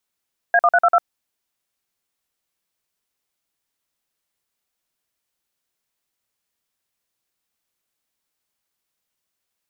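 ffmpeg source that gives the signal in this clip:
ffmpeg -f lavfi -i "aevalsrc='0.211*clip(min(mod(t,0.098),0.051-mod(t,0.098))/0.002,0,1)*(eq(floor(t/0.098),0)*(sin(2*PI*697*mod(t,0.098))+sin(2*PI*1633*mod(t,0.098)))+eq(floor(t/0.098),1)*(sin(2*PI*697*mod(t,0.098))+sin(2*PI*1209*mod(t,0.098)))+eq(floor(t/0.098),2)*(sin(2*PI*697*mod(t,0.098))+sin(2*PI*1477*mod(t,0.098)))+eq(floor(t/0.098),3)*(sin(2*PI*697*mod(t,0.098))+sin(2*PI*1336*mod(t,0.098)))+eq(floor(t/0.098),4)*(sin(2*PI*697*mod(t,0.098))+sin(2*PI*1336*mod(t,0.098))))':duration=0.49:sample_rate=44100" out.wav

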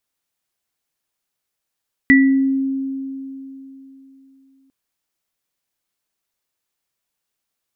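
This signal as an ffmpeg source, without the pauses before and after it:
ffmpeg -f lavfi -i "aevalsrc='0.398*pow(10,-3*t/3.38)*sin(2*PI*269*t)+0.422*pow(10,-3*t/0.46)*sin(2*PI*1960*t)':duration=2.6:sample_rate=44100" out.wav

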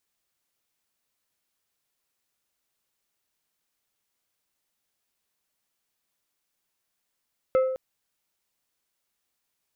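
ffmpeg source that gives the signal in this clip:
ffmpeg -f lavfi -i "aevalsrc='0.158*pow(10,-3*t/0.93)*sin(2*PI*521*t)+0.0422*pow(10,-3*t/0.49)*sin(2*PI*1302.5*t)+0.0112*pow(10,-3*t/0.352)*sin(2*PI*2084*t)+0.00299*pow(10,-3*t/0.301)*sin(2*PI*2605*t)+0.000794*pow(10,-3*t/0.251)*sin(2*PI*3386.5*t)':duration=0.21:sample_rate=44100" out.wav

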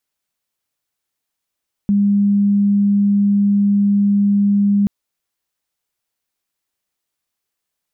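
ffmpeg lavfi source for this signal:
ffmpeg -f lavfi -i "sine=frequency=202:duration=2.98:sample_rate=44100,volume=7.06dB" out.wav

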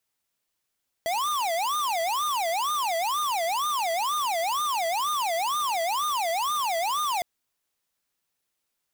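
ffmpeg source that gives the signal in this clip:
ffmpeg -f lavfi -i "aevalsrc='0.0473*(2*lt(mod((938.5*t-281.5/(2*PI*2.1)*sin(2*PI*2.1*t)),1),0.5)-1)':duration=6.16:sample_rate=44100" out.wav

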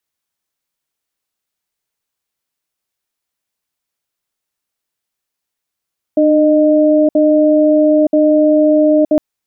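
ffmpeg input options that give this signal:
ffmpeg -f lavfi -i "aevalsrc='0.316*(sin(2*PI*302*t)+sin(2*PI*613*t))*clip(min(mod(t,0.98),0.92-mod(t,0.98))/0.005,0,1)':duration=3.01:sample_rate=44100" out.wav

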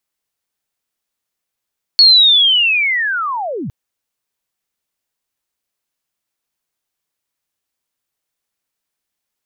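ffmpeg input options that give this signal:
ffmpeg -f lavfi -i "aevalsrc='pow(10,(-3.5-17.5*t/1.71)/20)*sin(2*PI*(4400*t-4304*t*t/(2*1.71)))':duration=1.71:sample_rate=44100" out.wav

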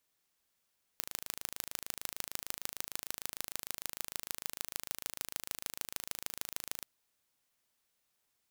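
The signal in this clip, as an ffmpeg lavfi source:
ffmpeg -f lavfi -i "aevalsrc='0.422*eq(mod(n,1658),0)*(0.5+0.5*eq(mod(n,6632),0))':duration=5.84:sample_rate=44100" out.wav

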